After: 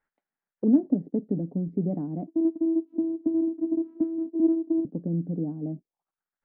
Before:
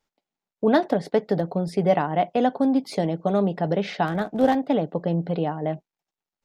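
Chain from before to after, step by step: 2.27–4.85 vocoder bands 4, saw 327 Hz; envelope low-pass 270–1700 Hz down, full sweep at -25 dBFS; gain -7 dB

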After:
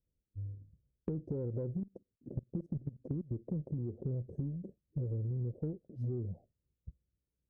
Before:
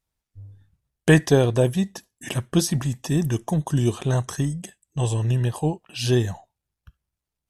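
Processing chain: rattling part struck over -27 dBFS, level -16 dBFS; elliptic low-pass 540 Hz, stop band 50 dB; 1.8–3.31 level quantiser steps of 22 dB; rotary speaker horn 1 Hz, later 5.5 Hz, at 2.92; limiter -20 dBFS, peak gain reduction 10.5 dB; compressor 8:1, threshold -37 dBFS, peak gain reduction 14 dB; added harmonics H 8 -35 dB, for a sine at -24 dBFS; gain +2.5 dB

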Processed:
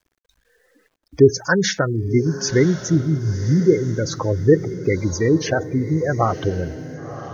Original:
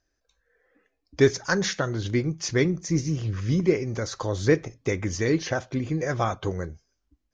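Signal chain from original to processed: spectral gate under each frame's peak -15 dB strong; bit-crush 12-bit; diffused feedback echo 1.04 s, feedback 40%, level -13 dB; gain +7 dB

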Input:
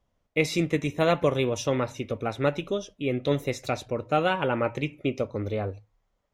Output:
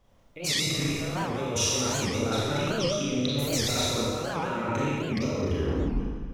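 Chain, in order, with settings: tape stop at the end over 0.98 s; dynamic EQ 1300 Hz, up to +6 dB, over -46 dBFS, Q 3.8; negative-ratio compressor -35 dBFS, ratio -1; Schroeder reverb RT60 1.7 s, combs from 28 ms, DRR -6 dB; record warp 78 rpm, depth 250 cents

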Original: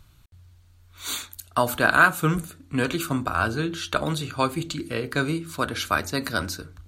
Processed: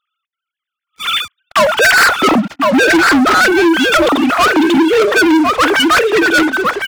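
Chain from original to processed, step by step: sine-wave speech; overloaded stage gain 14.5 dB; echo 1.056 s -10 dB; sample leveller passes 5; gain +5.5 dB

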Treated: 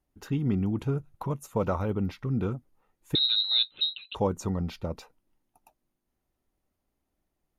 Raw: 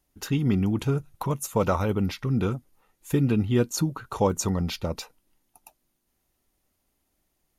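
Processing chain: high shelf 2300 Hz -11 dB; 3.15–4.15 inverted band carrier 4000 Hz; gain -3.5 dB

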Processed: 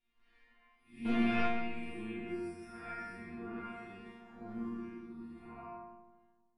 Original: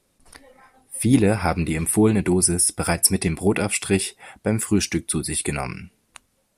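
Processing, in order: time blur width 0.21 s; bell 530 Hz -10.5 dB 0.8 oct; 1.05–1.47 sample leveller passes 5; limiter -15.5 dBFS, peak gain reduction 4 dB; low-pass sweep 2600 Hz -> 980 Hz, 1.98–4.41; 4.05–4.69 sample leveller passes 1; resonator bank A#3 fifth, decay 0.68 s; darkening echo 0.154 s, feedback 50%, low-pass 1200 Hz, level -9 dB; gain +6 dB

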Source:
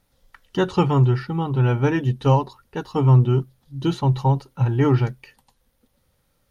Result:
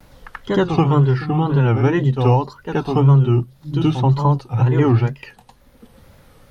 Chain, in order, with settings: high shelf 4700 Hz -6 dB; reverse echo 77 ms -10 dB; in parallel at +3 dB: compressor, threshold -26 dBFS, peak gain reduction 15.5 dB; on the sum: wow and flutter 140 cents; three-band squash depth 40%

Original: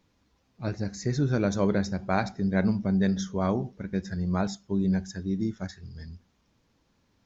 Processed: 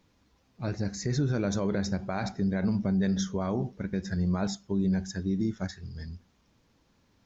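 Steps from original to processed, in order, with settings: limiter -21.5 dBFS, peak gain reduction 11 dB; gain +2 dB

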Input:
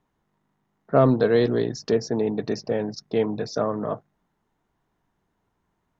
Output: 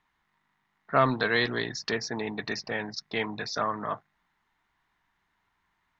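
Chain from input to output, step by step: graphic EQ 125/250/500/1000/2000/4000 Hz -4/-3/-8/+6/+12/+8 dB; gain -4.5 dB

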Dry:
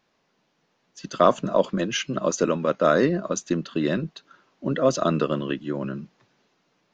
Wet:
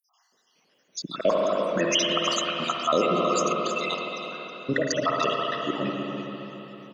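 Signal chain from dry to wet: random spectral dropouts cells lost 76%; tilt +3 dB/oct; added harmonics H 4 -40 dB, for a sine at -11 dBFS; bell 1700 Hz -3 dB 0.23 oct; echo 0.32 s -12 dB; reverb RT60 4.0 s, pre-delay 49 ms, DRR 0 dB; in parallel at -2 dB: negative-ratio compressor -29 dBFS

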